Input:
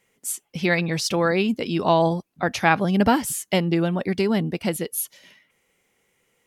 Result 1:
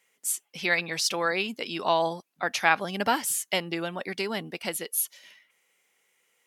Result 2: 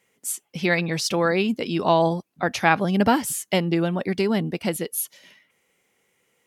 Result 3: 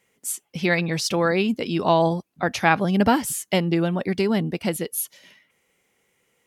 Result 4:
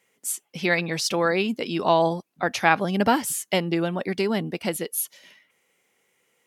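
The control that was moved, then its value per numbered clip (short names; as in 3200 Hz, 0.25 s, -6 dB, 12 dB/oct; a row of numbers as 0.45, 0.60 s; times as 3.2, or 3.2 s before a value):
HPF, cutoff: 1100, 110, 44, 280 Hz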